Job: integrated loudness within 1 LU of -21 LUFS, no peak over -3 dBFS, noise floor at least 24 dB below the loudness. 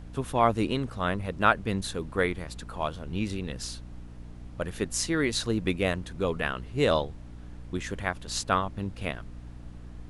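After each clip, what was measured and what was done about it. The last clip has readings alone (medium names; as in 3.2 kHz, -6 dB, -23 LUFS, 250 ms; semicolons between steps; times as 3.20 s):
hum 60 Hz; highest harmonic 300 Hz; hum level -41 dBFS; noise floor -44 dBFS; noise floor target -54 dBFS; loudness -29.5 LUFS; peak level -7.5 dBFS; loudness target -21.0 LUFS
-> de-hum 60 Hz, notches 5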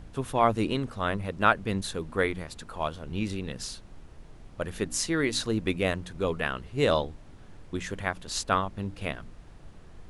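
hum not found; noise floor -50 dBFS; noise floor target -54 dBFS
-> noise print and reduce 6 dB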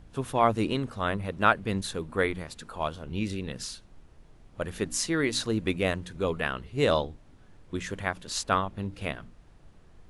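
noise floor -56 dBFS; loudness -29.5 LUFS; peak level -7.5 dBFS; loudness target -21.0 LUFS
-> trim +8.5 dB; peak limiter -3 dBFS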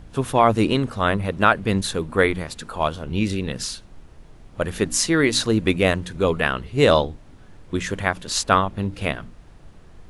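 loudness -21.5 LUFS; peak level -3.0 dBFS; noise floor -47 dBFS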